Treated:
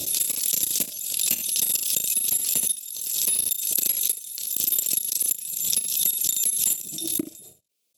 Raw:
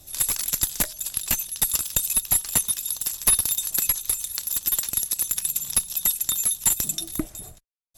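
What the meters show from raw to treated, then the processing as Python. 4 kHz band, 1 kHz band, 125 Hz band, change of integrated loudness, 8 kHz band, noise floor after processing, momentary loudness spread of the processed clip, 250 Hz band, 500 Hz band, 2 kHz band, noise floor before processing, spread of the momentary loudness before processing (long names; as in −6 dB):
+1.5 dB, below −10 dB, can't be measured, +0.5 dB, +0.5 dB, −62 dBFS, 6 LU, −0.5 dB, −1.0 dB, −4.0 dB, −51 dBFS, 6 LU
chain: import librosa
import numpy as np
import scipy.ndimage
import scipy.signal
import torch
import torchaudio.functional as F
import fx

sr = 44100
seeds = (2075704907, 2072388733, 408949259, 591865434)

y = fx.level_steps(x, sr, step_db=23)
y = scipy.signal.sosfilt(scipy.signal.butter(2, 210.0, 'highpass', fs=sr, output='sos'), y)
y = fx.band_shelf(y, sr, hz=1200.0, db=-13.5, octaves=1.7)
y = fx.room_early_taps(y, sr, ms=(35, 75), db=(-13.5, -13.5))
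y = fx.pre_swell(y, sr, db_per_s=38.0)
y = F.gain(torch.from_numpy(y), 1.5).numpy()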